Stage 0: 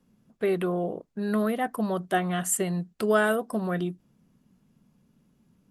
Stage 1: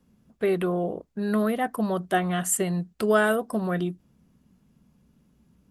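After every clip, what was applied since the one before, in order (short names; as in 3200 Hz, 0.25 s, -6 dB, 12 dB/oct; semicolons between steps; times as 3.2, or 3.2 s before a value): bell 64 Hz +13 dB 0.47 oct; gain +1.5 dB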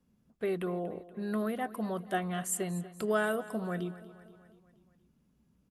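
feedback echo 0.238 s, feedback 56%, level -17 dB; gain -8.5 dB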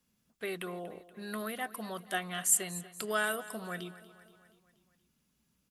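tilt shelf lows -8.5 dB, about 1200 Hz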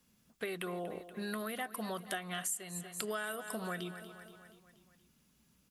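compressor 8:1, threshold -41 dBFS, peak gain reduction 19 dB; gain +5.5 dB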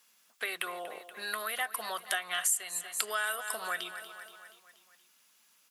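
HPF 900 Hz 12 dB/oct; gain +8.5 dB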